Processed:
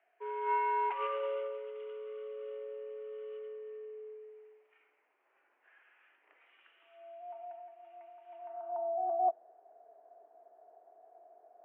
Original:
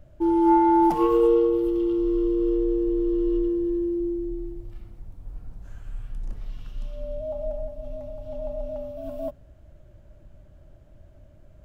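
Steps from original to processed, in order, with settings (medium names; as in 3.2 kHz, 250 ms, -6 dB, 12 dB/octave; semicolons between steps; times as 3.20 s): local Wiener filter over 9 samples; band-pass sweep 2.2 kHz -> 600 Hz, 8.40–8.93 s; mistuned SSB +86 Hz 280–2900 Hz; trim +4 dB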